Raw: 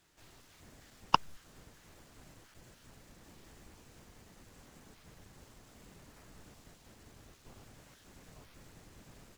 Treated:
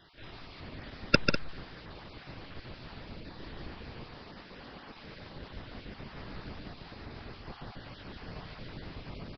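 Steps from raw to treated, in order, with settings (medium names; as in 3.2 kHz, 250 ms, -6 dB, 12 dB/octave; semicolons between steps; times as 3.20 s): random holes in the spectrogram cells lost 21%; 4.05–5.35 s: bass shelf 170 Hz -9 dB; on a send: loudspeakers at several distances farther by 49 m -5 dB, 68 m -10 dB; on the sum: resampled via 11.025 kHz; trim +12.5 dB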